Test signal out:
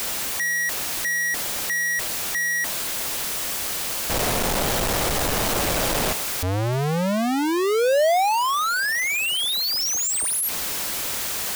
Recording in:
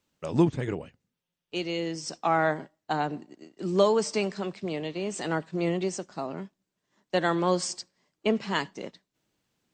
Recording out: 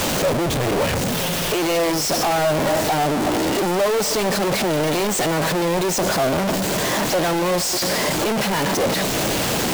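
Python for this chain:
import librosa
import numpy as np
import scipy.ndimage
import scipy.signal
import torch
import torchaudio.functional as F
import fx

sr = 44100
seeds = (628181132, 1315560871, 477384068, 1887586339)

y = np.sign(x) * np.sqrt(np.mean(np.square(x)))
y = fx.dynamic_eq(y, sr, hz=610.0, q=1.2, threshold_db=-48.0, ratio=4.0, max_db=7)
y = y * librosa.db_to_amplitude(7.5)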